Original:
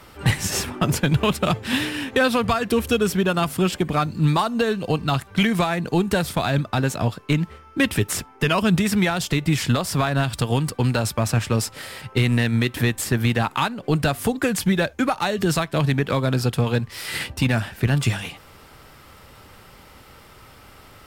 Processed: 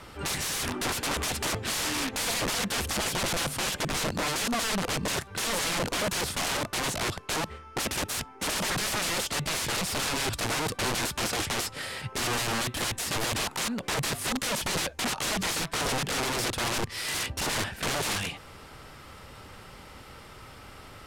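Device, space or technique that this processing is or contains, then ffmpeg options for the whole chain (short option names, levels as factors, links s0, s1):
overflowing digital effects unit: -af "aeval=exprs='(mod(15*val(0)+1,2)-1)/15':c=same,lowpass=11000"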